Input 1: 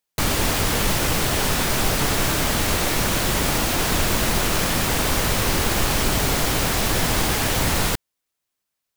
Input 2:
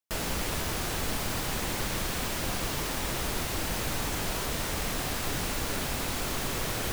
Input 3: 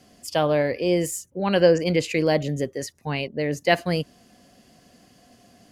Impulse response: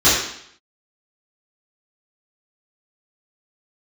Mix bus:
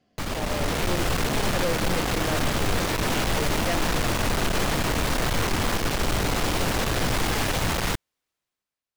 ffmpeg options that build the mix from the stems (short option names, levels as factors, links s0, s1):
-filter_complex "[0:a]highshelf=f=6600:g=-10,volume=0.501[s0];[1:a]lowpass=1100,adelay=200,volume=1.26[s1];[2:a]lowpass=3900,volume=0.282[s2];[s0][s1][s2]amix=inputs=3:normalize=0,dynaudnorm=f=200:g=7:m=3.76,aeval=exprs='(tanh(12.6*val(0)+0.5)-tanh(0.5))/12.6':c=same"